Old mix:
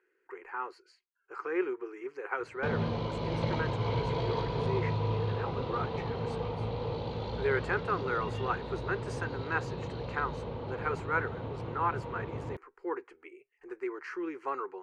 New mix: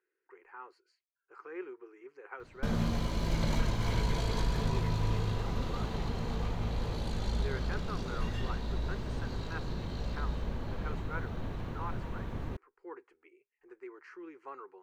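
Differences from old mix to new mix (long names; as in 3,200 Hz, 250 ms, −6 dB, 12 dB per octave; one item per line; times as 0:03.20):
speech −11.0 dB
background: remove loudspeaker in its box 100–4,100 Hz, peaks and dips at 120 Hz +7 dB, 210 Hz −5 dB, 480 Hz +10 dB, 900 Hz +6 dB, 1,700 Hz −8 dB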